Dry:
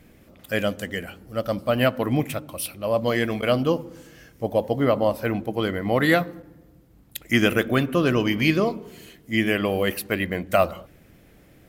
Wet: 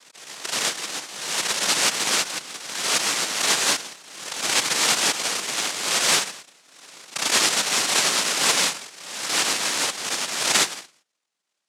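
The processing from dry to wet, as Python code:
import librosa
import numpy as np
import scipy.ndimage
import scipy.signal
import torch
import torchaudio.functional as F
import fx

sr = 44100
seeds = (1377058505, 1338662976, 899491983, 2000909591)

p1 = scipy.signal.medfilt(x, 5)
p2 = fx.noise_reduce_blind(p1, sr, reduce_db=26)
p3 = fx.spec_gate(p2, sr, threshold_db=-10, keep='strong')
p4 = p3 + fx.echo_single(p3, sr, ms=167, db=-20.0, dry=0)
p5 = fx.noise_vocoder(p4, sr, seeds[0], bands=1)
p6 = scipy.signal.sosfilt(scipy.signal.butter(4, 130.0, 'highpass', fs=sr, output='sos'), p5)
p7 = fx.low_shelf(p6, sr, hz=170.0, db=-9.0)
y = fx.pre_swell(p7, sr, db_per_s=54.0)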